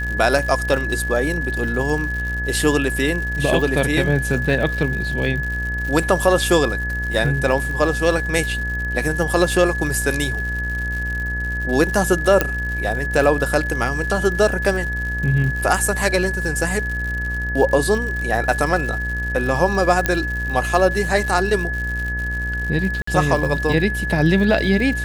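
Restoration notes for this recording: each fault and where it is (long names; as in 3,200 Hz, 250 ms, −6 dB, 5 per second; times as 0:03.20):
mains buzz 60 Hz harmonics 39 −26 dBFS
surface crackle 130 per second −27 dBFS
whistle 1,700 Hz −24 dBFS
0:12.41: click −2 dBFS
0:20.06: click −3 dBFS
0:23.02–0:23.07: drop-out 54 ms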